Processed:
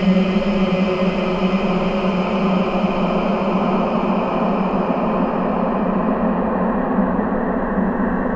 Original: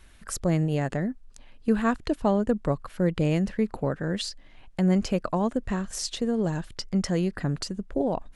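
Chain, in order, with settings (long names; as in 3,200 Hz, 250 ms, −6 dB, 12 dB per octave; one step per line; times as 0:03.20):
low-pass filter sweep 5,600 Hz → 220 Hz, 0:04.19–0:08.10
extreme stretch with random phases 14×, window 1.00 s, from 0:05.04
level +7.5 dB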